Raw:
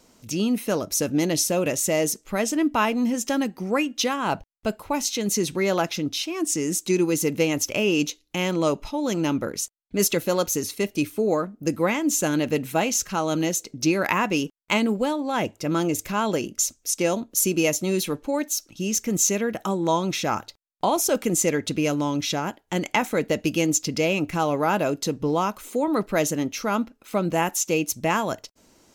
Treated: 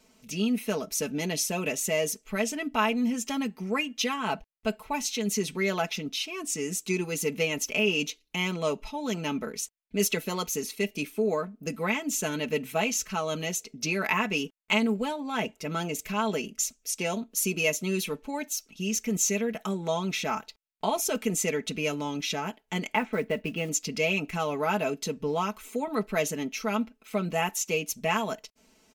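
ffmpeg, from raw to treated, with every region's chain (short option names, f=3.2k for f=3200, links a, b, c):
-filter_complex "[0:a]asettb=1/sr,asplit=3[a][b][c];[a]atrim=end=22.944[d];[b]atrim=start=22.94:end=23.69,asetpts=PTS-STARTPTS,afade=t=in:d=0.004:c=qsin,afade=t=out:st=0.746:d=0.004:c=qsin,lowpass=2.3k,lowshelf=f=91:g=2.5,acrusher=bits=7:mode=log:mix=0:aa=0.000001[e];[c]atrim=start=23.686[f];[d][e]acrossfade=d=0.004:c1=hsin:c2=qsin[g];[g][f]acrossfade=d=0.004:c1=qsin:c2=hsin,equalizer=f=2.5k:w=1.9:g=6.5,aecho=1:1:4.6:0.8,volume=-8dB"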